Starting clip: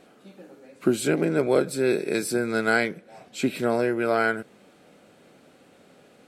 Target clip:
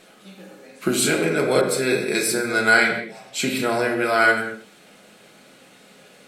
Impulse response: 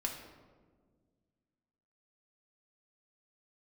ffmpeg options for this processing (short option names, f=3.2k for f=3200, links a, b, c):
-filter_complex "[0:a]tiltshelf=f=1.2k:g=-6[a];[1:a]atrim=start_sample=2205,afade=t=out:st=0.24:d=0.01,atrim=end_sample=11025,asetrate=36162,aresample=44100[b];[a][b]afir=irnorm=-1:irlink=0,asettb=1/sr,asplit=3[c][d][e];[c]atrim=end=1.614[f];[d]atrim=start=1.61:end=4.04,asetpts=PTS-STARTPTS,afade=t=in:d=0.004:c=qsin,afade=t=out:st=2.426:d=0.004:c=qsin,adynamicequalizer=threshold=0.0224:dfrequency=2300:dqfactor=0.7:tfrequency=2300:tqfactor=0.7:attack=5:release=100:ratio=0.375:range=1.5:mode=cutabove:tftype=highshelf[g];[e]atrim=start=4.036[h];[f][g]acrossfade=d=0.004:c1=hsin:c2=qsin[i];[i][h]acrossfade=d=0.004:c1=qsin:c2=hsin,volume=4dB"